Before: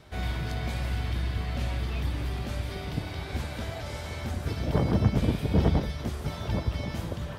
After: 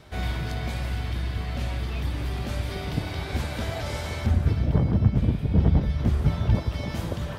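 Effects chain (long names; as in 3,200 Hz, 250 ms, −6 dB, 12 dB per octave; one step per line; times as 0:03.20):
speech leveller 0.5 s
0:04.26–0:06.55: bass and treble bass +9 dB, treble −7 dB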